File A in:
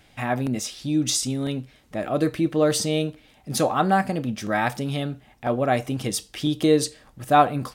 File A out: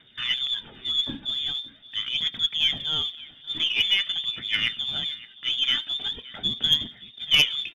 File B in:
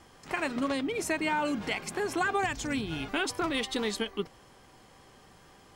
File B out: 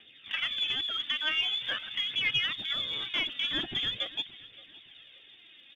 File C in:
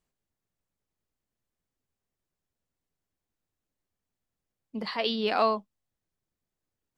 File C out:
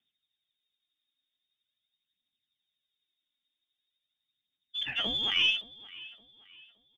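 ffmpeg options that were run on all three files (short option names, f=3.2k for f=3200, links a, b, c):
-filter_complex "[0:a]lowpass=f=3.1k:t=q:w=0.5098,lowpass=f=3.1k:t=q:w=0.6013,lowpass=f=3.1k:t=q:w=0.9,lowpass=f=3.1k:t=q:w=2.563,afreqshift=-3700,equalizer=f=125:t=o:w=1:g=9,equalizer=f=250:t=o:w=1:g=10,equalizer=f=500:t=o:w=1:g=-5,equalizer=f=1k:t=o:w=1:g=-12,aphaser=in_gain=1:out_gain=1:delay=3.7:decay=0.48:speed=0.44:type=triangular,acrossover=split=2900[a][b];[b]acompressor=threshold=-35dB:ratio=4:attack=1:release=60[c];[a][c]amix=inputs=2:normalize=0,asplit=2[d][e];[e]aecho=0:1:569|1138|1707:0.1|0.035|0.0123[f];[d][f]amix=inputs=2:normalize=0,aeval=exprs='0.422*(cos(1*acos(clip(val(0)/0.422,-1,1)))-cos(1*PI/2))+0.188*(cos(2*acos(clip(val(0)/0.422,-1,1)))-cos(2*PI/2))+0.0668*(cos(4*acos(clip(val(0)/0.422,-1,1)))-cos(4*PI/2))':c=same,volume=1.5dB"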